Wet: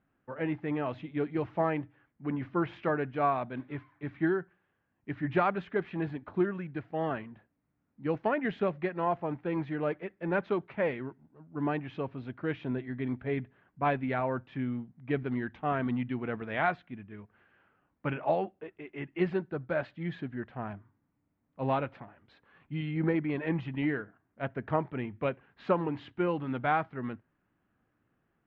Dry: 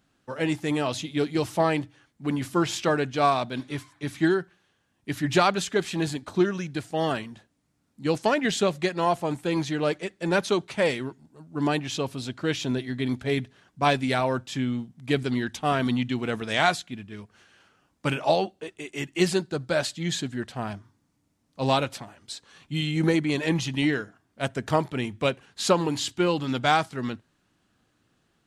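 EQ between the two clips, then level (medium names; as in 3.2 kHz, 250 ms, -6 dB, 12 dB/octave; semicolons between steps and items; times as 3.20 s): low-pass 2.2 kHz 24 dB/octave; -6.0 dB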